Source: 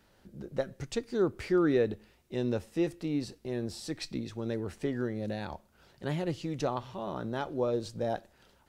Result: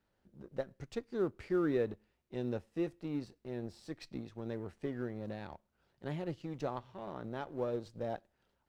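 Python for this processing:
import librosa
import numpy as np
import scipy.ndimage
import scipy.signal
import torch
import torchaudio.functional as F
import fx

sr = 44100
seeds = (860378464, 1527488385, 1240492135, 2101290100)

y = fx.law_mismatch(x, sr, coded='A')
y = fx.high_shelf(y, sr, hz=4400.0, db=-10.0)
y = y * 10.0 ** (-5.0 / 20.0)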